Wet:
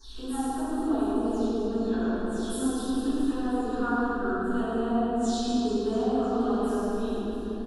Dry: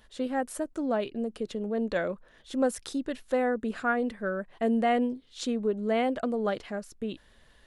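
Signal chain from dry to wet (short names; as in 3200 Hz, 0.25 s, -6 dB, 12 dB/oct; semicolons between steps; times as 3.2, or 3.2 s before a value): spectral delay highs early, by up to 0.204 s; dynamic EQ 2300 Hz, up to -7 dB, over -54 dBFS, Q 2.9; compressor 3:1, threshold -35 dBFS, peak gain reduction 10.5 dB; hum 50 Hz, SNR 18 dB; fixed phaser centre 560 Hz, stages 6; reverse bouncing-ball echo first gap 0.11 s, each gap 1.3×, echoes 5; reverb RT60 2.9 s, pre-delay 3 ms, DRR -18.5 dB; gain -8.5 dB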